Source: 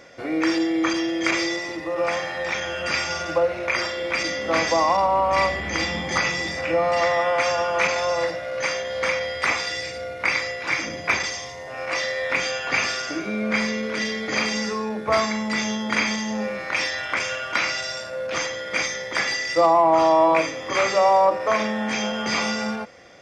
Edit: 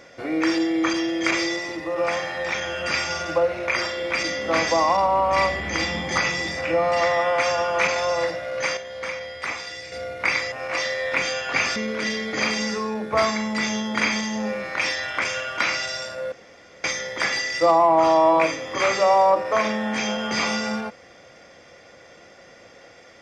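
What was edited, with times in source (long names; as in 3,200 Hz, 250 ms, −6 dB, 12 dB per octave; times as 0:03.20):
0:08.77–0:09.92: clip gain −7 dB
0:10.52–0:11.70: remove
0:12.94–0:13.71: remove
0:18.27–0:18.79: fill with room tone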